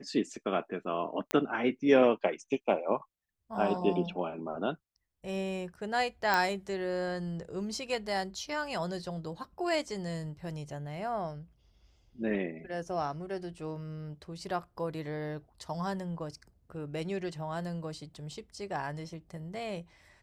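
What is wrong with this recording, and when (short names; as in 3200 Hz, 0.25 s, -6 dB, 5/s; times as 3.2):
1.31 pop -15 dBFS
6.34 pop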